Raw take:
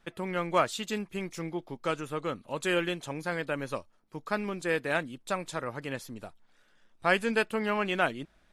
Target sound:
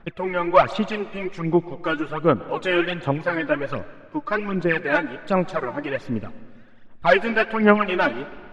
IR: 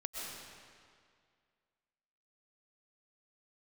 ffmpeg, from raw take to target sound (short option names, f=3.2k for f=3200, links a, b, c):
-filter_complex "[0:a]aeval=exprs='0.15*(abs(mod(val(0)/0.15+3,4)-2)-1)':c=same,aphaser=in_gain=1:out_gain=1:delay=3.5:decay=0.74:speed=1.3:type=sinusoidal,lowpass=2.6k,asplit=2[a][b];[1:a]atrim=start_sample=2205,asetrate=52920,aresample=44100[c];[b][c]afir=irnorm=-1:irlink=0,volume=-12.5dB[d];[a][d]amix=inputs=2:normalize=0,volume=5dB"